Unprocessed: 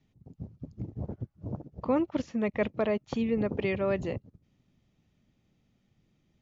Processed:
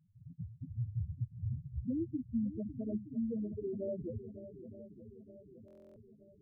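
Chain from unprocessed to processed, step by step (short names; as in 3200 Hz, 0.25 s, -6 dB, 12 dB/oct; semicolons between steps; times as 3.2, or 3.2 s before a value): Wiener smoothing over 41 samples; 0.71–3.02 low shelf 250 Hz +12 dB; compressor, threshold -37 dBFS, peak gain reduction 17.5 dB; loudest bins only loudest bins 2; swung echo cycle 0.921 s, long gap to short 1.5:1, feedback 49%, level -13 dB; stuck buffer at 5.66, samples 1024, times 12; gain +5.5 dB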